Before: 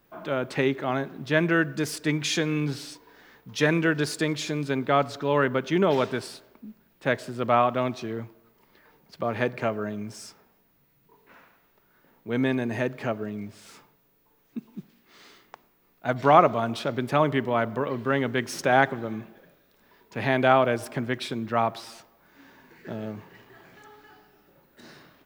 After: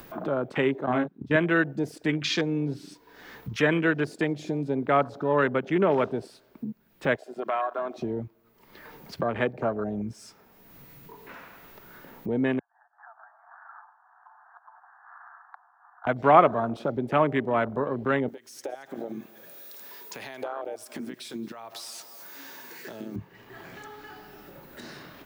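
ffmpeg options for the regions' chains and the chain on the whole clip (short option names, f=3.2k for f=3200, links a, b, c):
-filter_complex "[0:a]asettb=1/sr,asplit=3[a][b][c];[a]atrim=end=0.864[d];[b]atrim=start=0.86:end=1.36,asetpts=PTS-STARTPTS,afade=t=in:d=0.004:c=qsin,afade=t=out:st=0.496:d=0.004:c=qsin,equalizer=f=200:w=2.2:g=9.5,agate=range=-15dB:threshold=-29dB:ratio=16:release=100:detection=peak,asplit=2[e][f];[f]adelay=33,volume=-5.5dB[g];[e][g]amix=inputs=2:normalize=0,atrim=end_sample=22050[h];[c]atrim=start=1.356[i];[d][h]acrossfade=d=0.004:c1=hsin:c2=qsin[j];[j][i]acrossfade=d=0.004:c1=qsin:c2=hsin,asettb=1/sr,asplit=3[k][l][m];[k]atrim=end=7.164[n];[l]atrim=start=7.16:end=7.96,asetpts=PTS-STARTPTS,afade=t=in:d=0.004:c=qsin,afade=t=out:st=0.796:d=0.004:c=qsin,highpass=520,acompressor=threshold=-31dB:ratio=2:attack=3.2:release=140:knee=1:detection=peak,aecho=1:1:2.9:0.5,atrim=end_sample=35280[o];[m]atrim=start=7.956[p];[n][o]acrossfade=d=0.004:c1=hsin:c2=qsin[q];[q][p]acrossfade=d=0.004:c1=qsin:c2=hsin,asettb=1/sr,asplit=3[r][s][t];[r]atrim=end=12.594[u];[s]atrim=start=12.59:end=16.07,asetpts=PTS-STARTPTS,afade=t=in:d=0.004:c=qsin,afade=t=out:st=3.476:d=0.004:c=qsin,acompressor=threshold=-38dB:ratio=5:attack=3.2:release=140:knee=1:detection=peak,tremolo=f=220:d=0.71,asuperpass=centerf=1100:order=20:qfactor=1.1[v];[t]atrim=start=16.066[w];[u][v]acrossfade=d=0.004:c1=hsin:c2=qsin[x];[x][w]acrossfade=d=0.004:c1=qsin:c2=hsin,asettb=1/sr,asplit=3[y][z][aa];[y]atrim=end=18.284[ab];[z]atrim=start=18.28:end=23.16,asetpts=PTS-STARTPTS,afade=t=in:d=0.004:c=qsin,afade=t=out:st=4.876:d=0.004:c=qsin,bass=f=250:g=-13,treble=f=4k:g=13,acompressor=threshold=-38dB:ratio=5:attack=3.2:release=140:knee=1:detection=peak,aecho=1:1:224:0.112,atrim=end_sample=215208[ac];[aa]atrim=start=23.156[ad];[ab][ac]acrossfade=d=0.004:c1=hsin:c2=qsin[ae];[ae][ad]acrossfade=d=0.004:c1=qsin:c2=hsin,acrossover=split=190|3000[af][ag][ah];[af]acompressor=threshold=-44dB:ratio=1.5[ai];[ai][ag][ah]amix=inputs=3:normalize=0,afwtdn=0.0251,acompressor=mode=upward:threshold=-24dB:ratio=2.5"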